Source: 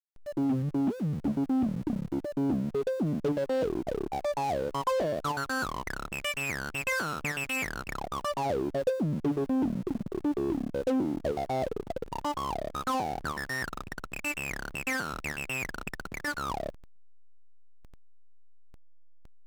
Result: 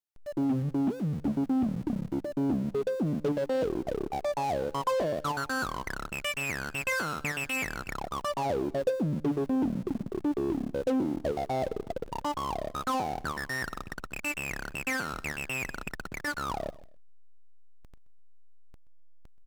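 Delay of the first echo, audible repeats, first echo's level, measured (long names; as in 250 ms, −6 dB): 127 ms, 2, −20.0 dB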